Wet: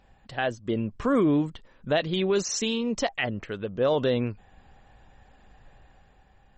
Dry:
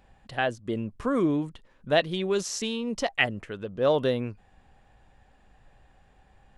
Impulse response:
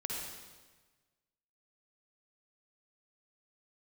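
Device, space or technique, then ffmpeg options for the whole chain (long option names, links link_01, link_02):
low-bitrate web radio: -af "dynaudnorm=framelen=120:gausssize=11:maxgain=4.5dB,alimiter=limit=-14.5dB:level=0:latency=1:release=47" -ar 48000 -c:a libmp3lame -b:a 32k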